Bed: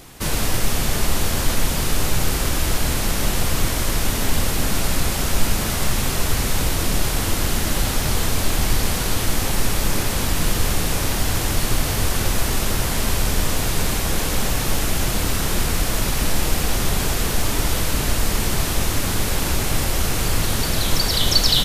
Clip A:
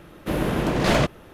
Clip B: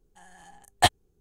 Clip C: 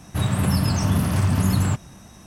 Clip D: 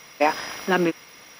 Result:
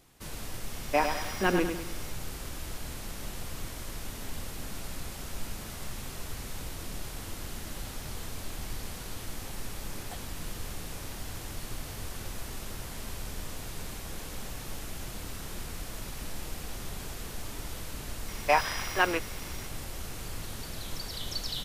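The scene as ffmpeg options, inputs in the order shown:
ffmpeg -i bed.wav -i cue0.wav -i cue1.wav -i cue2.wav -i cue3.wav -filter_complex "[4:a]asplit=2[link_01][link_02];[0:a]volume=-18.5dB[link_03];[link_01]aecho=1:1:101|202|303|404|505:0.447|0.192|0.0826|0.0355|0.0153[link_04];[2:a]acompressor=threshold=-27dB:ratio=6:attack=3.2:release=140:knee=1:detection=peak[link_05];[link_02]highpass=600[link_06];[link_04]atrim=end=1.39,asetpts=PTS-STARTPTS,volume=-6dB,afade=type=in:duration=0.004:curve=hsin,afade=type=out:start_time=1.386:duration=0.004:curve=hsin,adelay=730[link_07];[link_05]atrim=end=1.2,asetpts=PTS-STARTPTS,volume=-15dB,afade=type=in:duration=0.004:curve=hsin,afade=type=out:start_time=1.196:duration=0.004:curve=hsin,adelay=9290[link_08];[link_06]atrim=end=1.39,asetpts=PTS-STARTPTS,volume=-1.5dB,afade=type=in:duration=0.004:curve=hsin,afade=type=out:start_time=1.386:duration=0.004:curve=hsin,adelay=806148S[link_09];[link_03][link_07][link_08][link_09]amix=inputs=4:normalize=0" out.wav

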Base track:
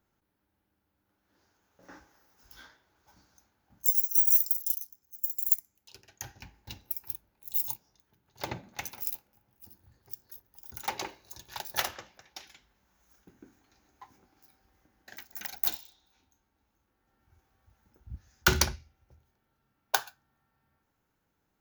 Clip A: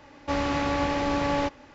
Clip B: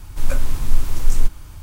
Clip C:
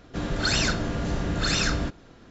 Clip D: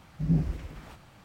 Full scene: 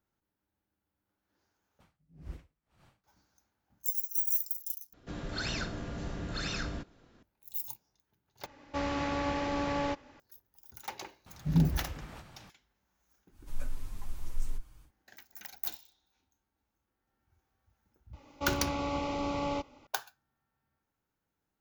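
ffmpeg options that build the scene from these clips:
ffmpeg -i bed.wav -i cue0.wav -i cue1.wav -i cue2.wav -i cue3.wav -filter_complex "[4:a]asplit=2[link_01][link_02];[1:a]asplit=2[link_03][link_04];[0:a]volume=-7.5dB[link_05];[link_01]aeval=exprs='val(0)*pow(10,-37*(0.5-0.5*cos(2*PI*1.9*n/s))/20)':channel_layout=same[link_06];[3:a]acrossover=split=6200[link_07][link_08];[link_08]acompressor=threshold=-47dB:ratio=4:attack=1:release=60[link_09];[link_07][link_09]amix=inputs=2:normalize=0[link_10];[2:a]asplit=2[link_11][link_12];[link_12]adelay=7.1,afreqshift=1.5[link_13];[link_11][link_13]amix=inputs=2:normalize=1[link_14];[link_04]asuperstop=centerf=1700:order=4:qfactor=2.7[link_15];[link_05]asplit=4[link_16][link_17][link_18][link_19];[link_16]atrim=end=1.804[link_20];[link_06]atrim=end=1.24,asetpts=PTS-STARTPTS,volume=-8dB[link_21];[link_17]atrim=start=3.036:end=4.934[link_22];[link_10]atrim=end=2.3,asetpts=PTS-STARTPTS,volume=-11dB[link_23];[link_18]atrim=start=7.226:end=8.464[link_24];[link_03]atrim=end=1.74,asetpts=PTS-STARTPTS,volume=-6.5dB[link_25];[link_19]atrim=start=10.196[link_26];[link_02]atrim=end=1.24,asetpts=PTS-STARTPTS,volume=-0.5dB,afade=type=in:duration=0.004:curve=hsin,afade=type=out:start_time=1.236:duration=0.004:curve=hsin,adelay=11260[link_27];[link_14]atrim=end=1.62,asetpts=PTS-STARTPTS,volume=-16dB,afade=type=in:duration=0.1,afade=type=out:start_time=1.52:duration=0.1,adelay=13300[link_28];[link_15]atrim=end=1.74,asetpts=PTS-STARTPTS,volume=-7.5dB,afade=type=in:duration=0.004:curve=hsin,afade=type=out:start_time=1.736:duration=0.004:curve=hsin,adelay=18130[link_29];[link_20][link_21]acrossfade=duration=0.004:curve1=hsin:curve2=hsin[link_30];[link_30][link_22]acrossfade=duration=0.004:curve1=hsin:curve2=hsin[link_31];[link_31][link_23]acrossfade=duration=0.004:curve1=hsin:curve2=hsin[link_32];[link_32][link_24]acrossfade=duration=0.004:curve1=hsin:curve2=hsin[link_33];[link_33][link_25]acrossfade=duration=0.004:curve1=hsin:curve2=hsin[link_34];[link_34][link_26]acrossfade=duration=0.004:curve1=hsin:curve2=hsin[link_35];[link_35][link_27][link_28][link_29]amix=inputs=4:normalize=0" out.wav

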